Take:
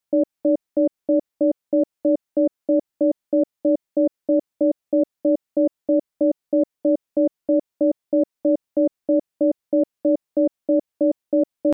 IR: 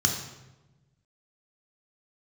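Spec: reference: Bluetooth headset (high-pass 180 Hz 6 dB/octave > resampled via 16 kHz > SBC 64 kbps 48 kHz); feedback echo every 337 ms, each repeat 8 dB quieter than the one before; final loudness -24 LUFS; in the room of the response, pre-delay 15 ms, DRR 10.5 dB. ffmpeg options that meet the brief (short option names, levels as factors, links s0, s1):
-filter_complex "[0:a]aecho=1:1:337|674|1011|1348|1685:0.398|0.159|0.0637|0.0255|0.0102,asplit=2[s0][s1];[1:a]atrim=start_sample=2205,adelay=15[s2];[s1][s2]afir=irnorm=-1:irlink=0,volume=0.0944[s3];[s0][s3]amix=inputs=2:normalize=0,highpass=f=180:p=1,aresample=16000,aresample=44100,volume=0.841" -ar 48000 -c:a sbc -b:a 64k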